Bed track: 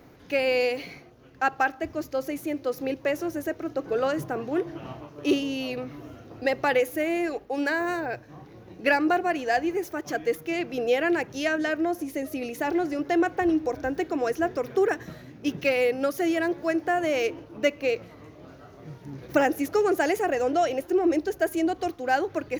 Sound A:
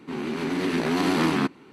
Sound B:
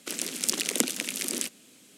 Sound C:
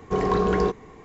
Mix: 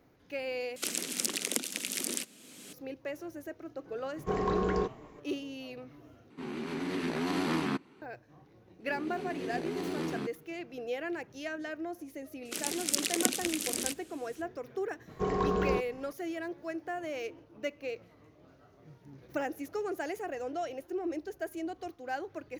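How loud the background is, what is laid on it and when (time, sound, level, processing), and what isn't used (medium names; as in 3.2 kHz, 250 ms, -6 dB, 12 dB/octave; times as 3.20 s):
bed track -12.5 dB
0.76 s: replace with B -4.5 dB + three bands compressed up and down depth 70%
4.16 s: add C -8 dB
6.30 s: replace with A -8.5 dB
8.80 s: add A -11.5 dB + FFT filter 160 Hz 0 dB, 280 Hz -4 dB, 400 Hz +4 dB, 1 kHz -7 dB, 9.6 kHz -1 dB
12.45 s: add B -3 dB
15.09 s: add C -7.5 dB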